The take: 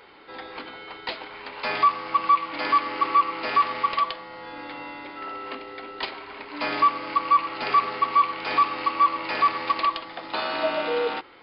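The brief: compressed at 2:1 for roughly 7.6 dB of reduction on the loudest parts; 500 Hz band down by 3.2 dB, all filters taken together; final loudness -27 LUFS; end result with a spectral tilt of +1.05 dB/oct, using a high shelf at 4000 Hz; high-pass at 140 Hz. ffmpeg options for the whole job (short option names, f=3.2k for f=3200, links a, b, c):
-af "highpass=140,equalizer=f=500:t=o:g=-4,highshelf=f=4k:g=5.5,acompressor=threshold=-29dB:ratio=2,volume=3.5dB"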